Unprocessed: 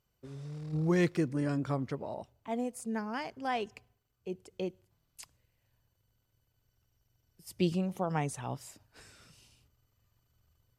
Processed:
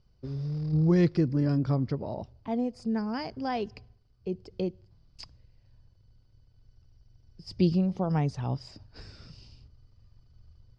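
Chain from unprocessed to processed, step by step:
spectral tilt −3.5 dB per octave
in parallel at −0.5 dB: downward compressor, threshold −36 dBFS, peak gain reduction 18 dB
on the sum: low-pass with resonance 4,900 Hz, resonance Q 7.9
level −3 dB

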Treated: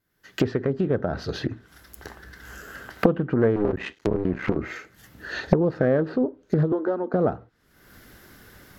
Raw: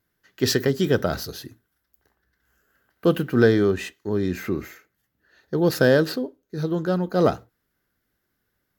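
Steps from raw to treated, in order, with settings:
0:03.56–0:04.57: sub-harmonics by changed cycles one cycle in 3, muted
camcorder AGC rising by 46 dB per second
treble cut that deepens with the level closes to 1,200 Hz, closed at −17 dBFS
0:06.72–0:07.14: elliptic high-pass filter 230 Hz, stop band 40 dB
highs frequency-modulated by the lows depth 0.58 ms
level −3.5 dB

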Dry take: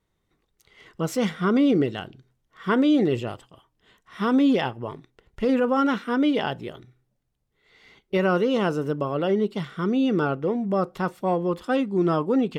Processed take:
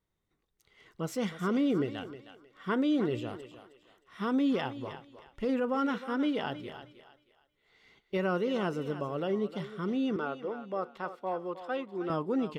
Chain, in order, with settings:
0:10.16–0:12.10: three-way crossover with the lows and the highs turned down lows −13 dB, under 360 Hz, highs −13 dB, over 4,600 Hz
feedback echo with a high-pass in the loop 313 ms, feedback 31%, high-pass 410 Hz, level −11 dB
level −8.5 dB

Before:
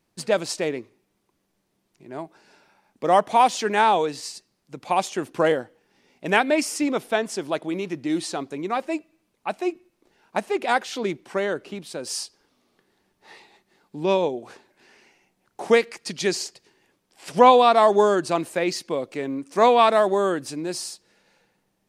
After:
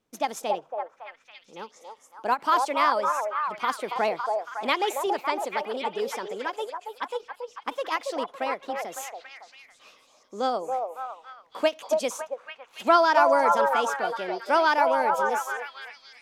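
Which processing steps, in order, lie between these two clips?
high-shelf EQ 7,600 Hz −10.5 dB
on a send: echo through a band-pass that steps 376 ms, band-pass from 520 Hz, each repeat 0.7 octaves, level −1 dB
on the sum: wrong playback speed 33 rpm record played at 45 rpm
every ending faded ahead of time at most 460 dB per second
level −5 dB

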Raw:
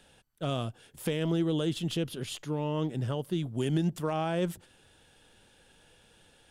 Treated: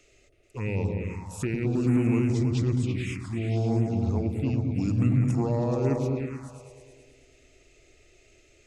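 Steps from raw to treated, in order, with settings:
speed change −25%
echo whose low-pass opens from repeat to repeat 108 ms, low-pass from 200 Hz, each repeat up 2 octaves, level 0 dB
phaser swept by the level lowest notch 170 Hz, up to 5,000 Hz, full sweep at −21 dBFS
level +2 dB

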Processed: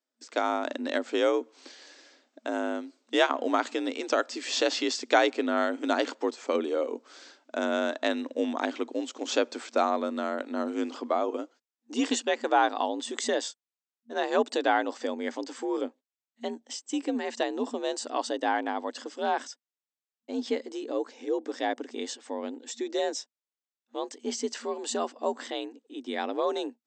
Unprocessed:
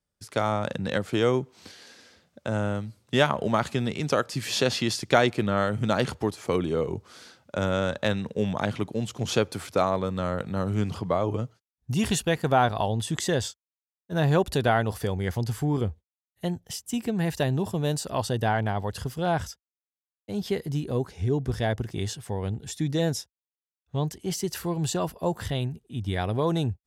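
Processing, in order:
brick-wall band-pass 180–8,200 Hz
frequency shifter +56 Hz
level −1.5 dB

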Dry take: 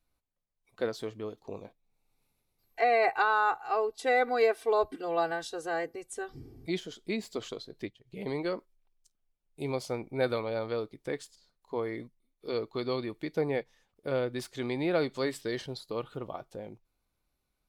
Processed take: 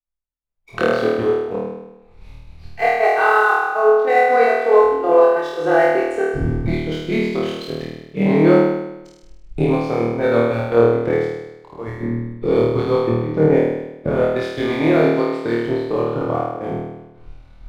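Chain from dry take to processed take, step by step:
camcorder AGC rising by 37 dB per second
low-pass filter 2,300 Hz 12 dB per octave
mains-hum notches 60/120/180/240/300 Hz
0:11.87–0:14.23: low-shelf EQ 140 Hz +11.5 dB
downward compressor, threshold −28 dBFS, peak gain reduction 8 dB
leveller curve on the samples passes 1
gate pattern "x.x.xxxxxx.x" 140 BPM −12 dB
flutter between parallel walls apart 4.4 metres, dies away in 1.5 s
multiband upward and downward expander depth 70%
level +7.5 dB

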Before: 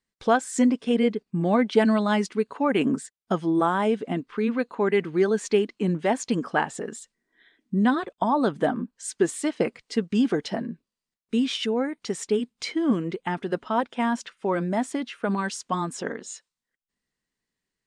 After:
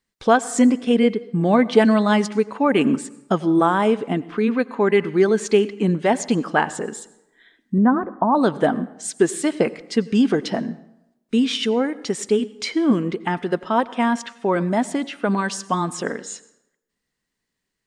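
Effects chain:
0:07.78–0:08.35: low-pass filter 1,400 Hz 24 dB per octave
dense smooth reverb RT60 0.88 s, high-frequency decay 0.65×, pre-delay 75 ms, DRR 18 dB
level +5 dB

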